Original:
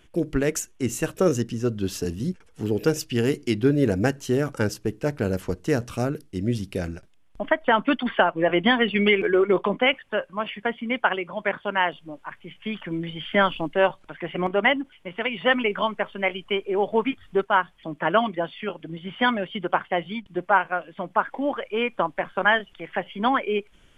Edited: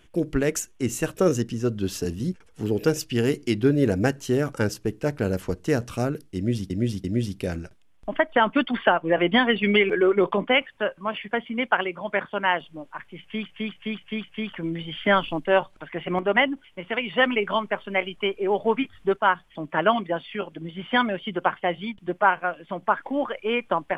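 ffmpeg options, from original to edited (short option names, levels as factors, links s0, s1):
-filter_complex "[0:a]asplit=7[s0][s1][s2][s3][s4][s5][s6];[s0]atrim=end=6.702[s7];[s1]atrim=start=6.358:end=6.702[s8];[s2]atrim=start=6.358:end=12.782[s9];[s3]atrim=start=12.518:end=12.782[s10];[s4]atrim=start=12.518:end=12.782[s11];[s5]atrim=start=12.518:end=12.782[s12];[s6]atrim=start=12.518[s13];[s7][s8]acrossfade=d=0.004:c1=hsin:c2=hsin[s14];[s14][s9]acrossfade=d=0.004:c1=hsin:c2=hsin[s15];[s15][s10]acrossfade=d=0.004:c1=hsin:c2=hsin[s16];[s16][s11]acrossfade=d=0.004:c1=hsin:c2=hsin[s17];[s17][s12]acrossfade=d=0.004:c1=hsin:c2=hsin[s18];[s18][s13]acrossfade=d=0.004:c1=hsin:c2=hsin"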